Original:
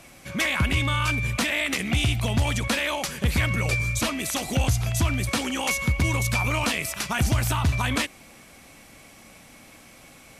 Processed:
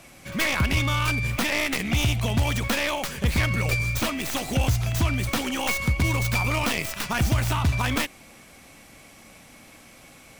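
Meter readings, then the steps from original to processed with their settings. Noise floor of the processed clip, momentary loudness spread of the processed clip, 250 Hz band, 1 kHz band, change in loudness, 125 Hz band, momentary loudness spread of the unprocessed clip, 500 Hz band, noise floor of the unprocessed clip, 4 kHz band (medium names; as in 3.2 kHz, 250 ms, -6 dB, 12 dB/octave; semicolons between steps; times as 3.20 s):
-50 dBFS, 3 LU, 0.0 dB, +0.5 dB, 0.0 dB, +0.5 dB, 3 LU, +0.5 dB, -50 dBFS, -0.5 dB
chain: tracing distortion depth 0.13 ms; pre-echo 77 ms -21.5 dB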